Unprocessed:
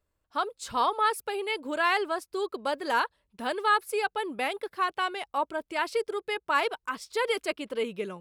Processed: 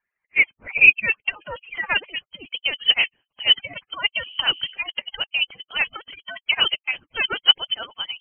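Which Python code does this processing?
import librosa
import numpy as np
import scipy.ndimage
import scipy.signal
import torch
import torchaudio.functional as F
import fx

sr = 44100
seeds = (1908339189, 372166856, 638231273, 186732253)

y = fx.hpss_only(x, sr, part='percussive')
y = fx.low_shelf(y, sr, hz=240.0, db=-5.0)
y = fx.dmg_noise_band(y, sr, seeds[0], low_hz=84.0, high_hz=740.0, level_db=-53.0, at=(4.18, 4.71), fade=0.02)
y = fx.filter_sweep_highpass(y, sr, from_hz=1900.0, to_hz=580.0, start_s=0.01, end_s=1.93, q=5.4)
y = fx.freq_invert(y, sr, carrier_hz=3600)
y = y * librosa.db_to_amplitude(5.5)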